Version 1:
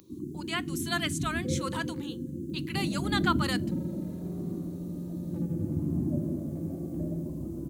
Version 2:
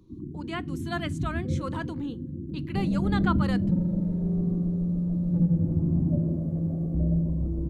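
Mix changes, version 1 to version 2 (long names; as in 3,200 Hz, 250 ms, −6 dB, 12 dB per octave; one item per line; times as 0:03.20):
first sound −9.5 dB
master: add spectral tilt −4.5 dB per octave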